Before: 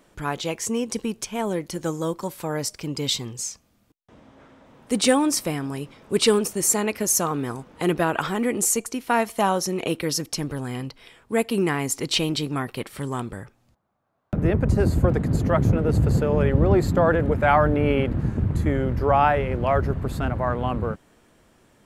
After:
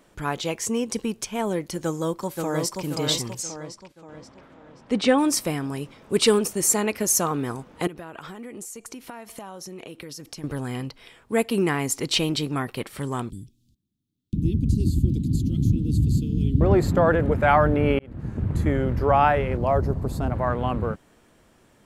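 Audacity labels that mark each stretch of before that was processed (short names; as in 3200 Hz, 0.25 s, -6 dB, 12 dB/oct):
1.830000	2.810000	echo throw 0.53 s, feedback 45%, level -3.5 dB
3.420000	5.170000	LPF 6900 Hz -> 3400 Hz
7.870000	10.440000	compressor 16:1, threshold -34 dBFS
13.300000	16.610000	elliptic band-stop 300–3400 Hz
17.990000	18.610000	fade in
19.570000	20.320000	band shelf 2100 Hz -8.5 dB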